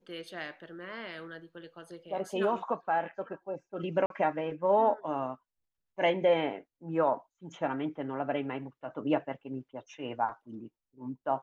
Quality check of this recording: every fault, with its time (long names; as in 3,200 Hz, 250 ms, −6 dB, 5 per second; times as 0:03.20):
0:04.06–0:04.10: drop-out 42 ms